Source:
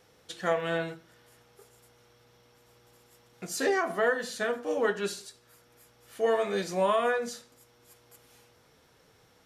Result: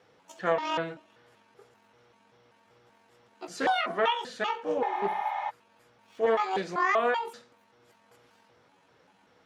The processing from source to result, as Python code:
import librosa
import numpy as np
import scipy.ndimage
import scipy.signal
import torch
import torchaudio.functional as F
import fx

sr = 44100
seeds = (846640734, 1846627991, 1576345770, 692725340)

y = fx.pitch_trill(x, sr, semitones=11.0, every_ms=193)
y = fx.weighting(y, sr, curve='A')
y = fx.spec_repair(y, sr, seeds[0], start_s=4.86, length_s=0.61, low_hz=600.0, high_hz=10000.0, source='before')
y = fx.riaa(y, sr, side='playback')
y = fx.doppler_dist(y, sr, depth_ms=0.14)
y = F.gain(torch.from_numpy(y), 1.5).numpy()